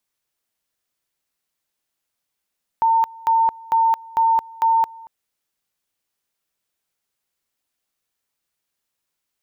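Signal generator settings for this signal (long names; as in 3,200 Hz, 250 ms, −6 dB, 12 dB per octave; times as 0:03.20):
tone at two levels in turn 906 Hz −13 dBFS, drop 23.5 dB, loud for 0.22 s, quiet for 0.23 s, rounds 5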